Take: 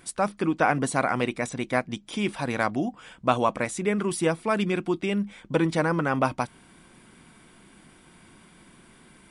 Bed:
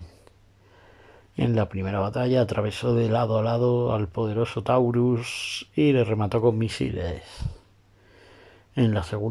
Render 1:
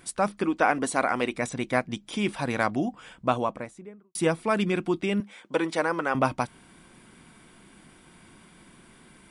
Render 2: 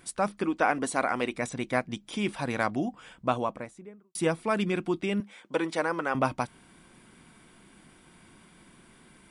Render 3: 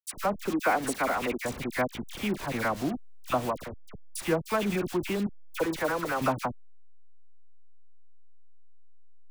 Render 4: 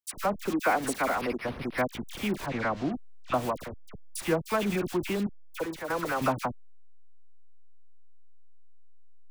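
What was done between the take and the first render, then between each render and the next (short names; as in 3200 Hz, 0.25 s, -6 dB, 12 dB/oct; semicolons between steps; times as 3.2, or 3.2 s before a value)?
0.43–1.34 bell 140 Hz -13 dB 0.67 oct; 2.99–4.15 studio fade out; 5.2–6.15 HPF 360 Hz
gain -2.5 dB
level-crossing sampler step -33 dBFS; dispersion lows, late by 66 ms, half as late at 1500 Hz
1.21–1.78 decimation joined by straight lines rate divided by 6×; 2.46–3.34 air absorption 140 m; 5.21–5.9 fade out, to -9 dB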